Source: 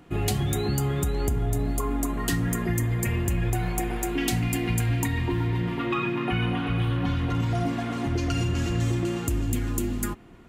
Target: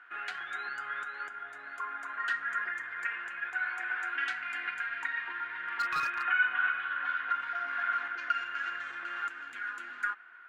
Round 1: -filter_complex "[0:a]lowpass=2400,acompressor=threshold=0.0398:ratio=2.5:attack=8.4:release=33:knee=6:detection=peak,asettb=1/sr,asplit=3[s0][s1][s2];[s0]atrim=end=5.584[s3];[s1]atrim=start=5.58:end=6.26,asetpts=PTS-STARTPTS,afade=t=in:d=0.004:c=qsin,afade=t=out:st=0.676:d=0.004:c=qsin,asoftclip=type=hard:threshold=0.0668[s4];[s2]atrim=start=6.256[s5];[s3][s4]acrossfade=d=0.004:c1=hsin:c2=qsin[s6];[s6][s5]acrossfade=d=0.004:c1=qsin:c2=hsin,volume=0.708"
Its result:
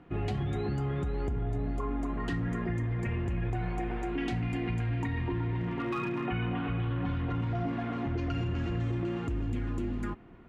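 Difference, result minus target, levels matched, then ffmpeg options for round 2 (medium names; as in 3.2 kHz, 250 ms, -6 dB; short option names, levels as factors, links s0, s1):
2 kHz band -13.5 dB
-filter_complex "[0:a]lowpass=2400,acompressor=threshold=0.0398:ratio=2.5:attack=8.4:release=33:knee=6:detection=peak,highpass=f=1500:t=q:w=11,asettb=1/sr,asplit=3[s0][s1][s2];[s0]atrim=end=5.584[s3];[s1]atrim=start=5.58:end=6.26,asetpts=PTS-STARTPTS,afade=t=in:d=0.004:c=qsin,afade=t=out:st=0.676:d=0.004:c=qsin,asoftclip=type=hard:threshold=0.0668[s4];[s2]atrim=start=6.256[s5];[s3][s4]acrossfade=d=0.004:c1=hsin:c2=qsin[s6];[s6][s5]acrossfade=d=0.004:c1=qsin:c2=hsin,volume=0.708"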